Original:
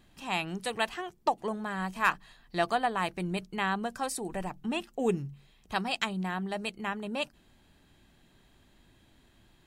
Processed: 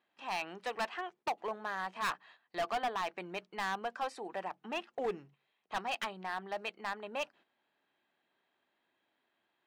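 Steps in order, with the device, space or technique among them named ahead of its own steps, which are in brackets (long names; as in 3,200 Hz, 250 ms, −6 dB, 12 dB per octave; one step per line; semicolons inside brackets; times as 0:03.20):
walkie-talkie (band-pass filter 520–2,700 Hz; hard clipping −29.5 dBFS, distortion −6 dB; noise gate −59 dBFS, range −10 dB)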